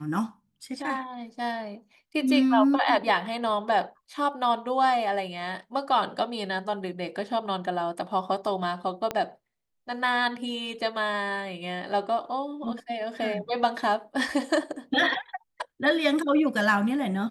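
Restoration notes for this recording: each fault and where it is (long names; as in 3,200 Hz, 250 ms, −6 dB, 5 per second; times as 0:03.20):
0:09.11: click −14 dBFS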